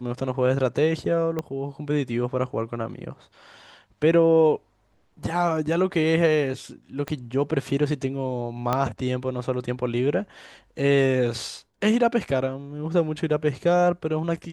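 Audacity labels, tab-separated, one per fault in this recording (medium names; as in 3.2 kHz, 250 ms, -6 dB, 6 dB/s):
1.390000	1.390000	pop -15 dBFS
7.080000	7.080000	pop -16 dBFS
8.730000	8.730000	pop -10 dBFS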